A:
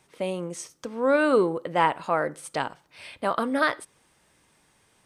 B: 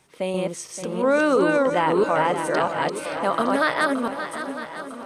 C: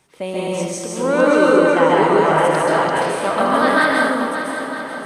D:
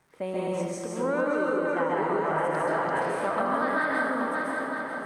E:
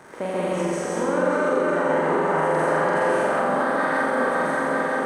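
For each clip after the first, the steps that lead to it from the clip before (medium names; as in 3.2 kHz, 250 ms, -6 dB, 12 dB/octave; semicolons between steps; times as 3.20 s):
chunks repeated in reverse 340 ms, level -1 dB; shuffle delay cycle 954 ms, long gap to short 1.5:1, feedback 45%, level -11 dB; loudness maximiser +11.5 dB; trim -9 dB
plate-style reverb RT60 1 s, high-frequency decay 0.85×, pre-delay 120 ms, DRR -5 dB
compression, threshold -17 dBFS, peak gain reduction 9 dB; crackle 190 per s -43 dBFS; resonant high shelf 2.3 kHz -6.5 dB, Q 1.5; trim -6.5 dB
spectral levelling over time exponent 0.6; peak limiter -16 dBFS, peak gain reduction 4.5 dB; on a send: flutter echo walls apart 7.6 m, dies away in 0.95 s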